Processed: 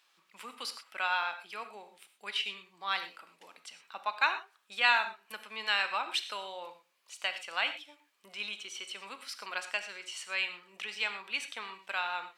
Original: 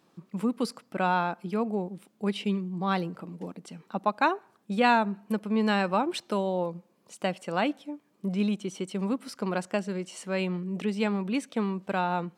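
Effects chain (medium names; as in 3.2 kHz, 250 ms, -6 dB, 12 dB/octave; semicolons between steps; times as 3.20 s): high-pass 1.4 kHz 12 dB/octave; peaking EQ 2.9 kHz +5.5 dB 1.3 oct; gated-style reverb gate 140 ms flat, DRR 8.5 dB; dynamic bell 9 kHz, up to -4 dB, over -57 dBFS, Q 1.8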